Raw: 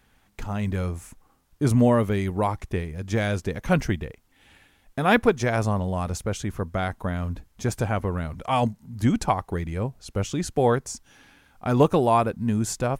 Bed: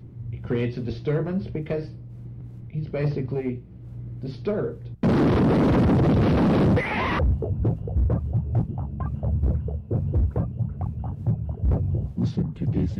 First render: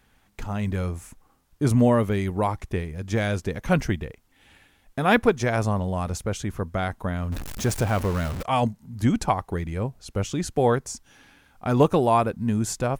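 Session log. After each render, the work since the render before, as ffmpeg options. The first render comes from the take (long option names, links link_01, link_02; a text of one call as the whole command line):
ffmpeg -i in.wav -filter_complex "[0:a]asettb=1/sr,asplit=3[link_01][link_02][link_03];[link_01]atrim=end=7.324[link_04];[link_02]atrim=start=7.32:end=8.43,asetpts=PTS-STARTPTS,afade=type=in:duration=0.004:curve=qsin,afade=type=out:start_time=1.106:duration=0.004:curve=qsin,aeval=exprs='val(0)+0.5*0.0376*sgn(val(0))':channel_layout=same[link_05];[link_03]atrim=start=8.426[link_06];[link_04][link_05]acrossfade=duration=0.004:curve1=hsin:curve2=qsin[link_07];[link_07][link_06]acrossfade=duration=0.004:curve1=qsin:curve2=hsin" out.wav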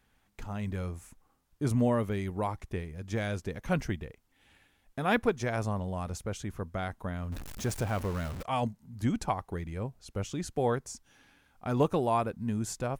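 ffmpeg -i in.wav -af "volume=-8dB" out.wav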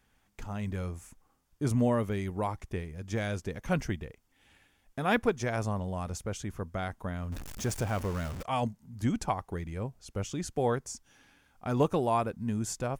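ffmpeg -i in.wav -af "equalizer=frequency=6500:width=1.5:gain=2.5,bandreject=frequency=4000:width=21" out.wav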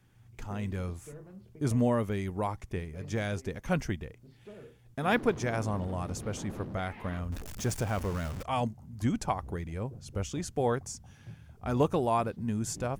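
ffmpeg -i in.wav -i bed.wav -filter_complex "[1:a]volume=-23dB[link_01];[0:a][link_01]amix=inputs=2:normalize=0" out.wav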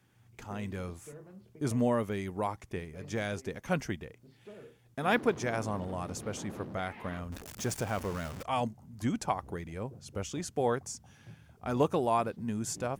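ffmpeg -i in.wav -af "highpass=frequency=170:poles=1" out.wav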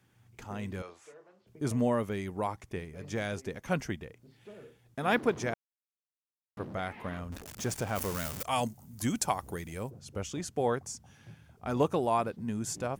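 ffmpeg -i in.wav -filter_complex "[0:a]asettb=1/sr,asplit=3[link_01][link_02][link_03];[link_01]atrim=end=0.824[link_04];[link_02]atrim=start=0.82:end=1.47,asetpts=PTS-STARTPTS,afade=type=in:duration=0.004:curve=qsin,afade=type=out:start_time=0.646:duration=0.004:curve=qsin,acrossover=split=400 6800:gain=0.0708 1 0.0891[link_05][link_06][link_07];[link_05][link_06][link_07]amix=inputs=3:normalize=0[link_08];[link_03]atrim=start=1.466[link_09];[link_04][link_08]acrossfade=duration=0.004:curve1=hsin:curve2=qsin[link_10];[link_10][link_09]acrossfade=duration=0.004:curve1=qsin:curve2=hsin,asplit=3[link_11][link_12][link_13];[link_11]afade=type=out:start_time=7.95:duration=0.02[link_14];[link_12]aemphasis=mode=production:type=75kf,afade=type=in:start_time=7.95:duration=0.02,afade=type=out:start_time=9.89:duration=0.02[link_15];[link_13]afade=type=in:start_time=9.89:duration=0.02[link_16];[link_14][link_15][link_16]amix=inputs=3:normalize=0,asplit=3[link_17][link_18][link_19];[link_17]atrim=end=5.54,asetpts=PTS-STARTPTS,afade=type=out:start_time=5.536:duration=0.004:curve=hsin[link_20];[link_18]atrim=start=5.54:end=6.57,asetpts=PTS-STARTPTS,volume=0[link_21];[link_19]atrim=start=6.57,asetpts=PTS-STARTPTS,afade=type=in:duration=0.004:curve=hsin[link_22];[link_20][link_21][link_22]concat=n=3:v=0:a=1" out.wav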